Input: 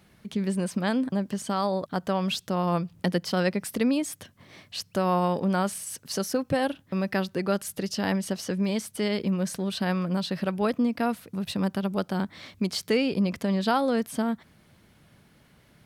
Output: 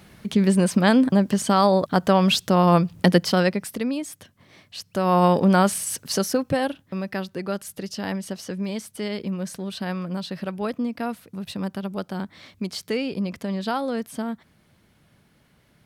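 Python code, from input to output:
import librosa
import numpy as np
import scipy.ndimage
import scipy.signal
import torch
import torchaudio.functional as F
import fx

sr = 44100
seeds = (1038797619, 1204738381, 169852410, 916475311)

y = fx.gain(x, sr, db=fx.line((3.19, 9.0), (3.83, -2.0), (4.83, -2.0), (5.25, 8.0), (5.94, 8.0), (7.06, -2.0)))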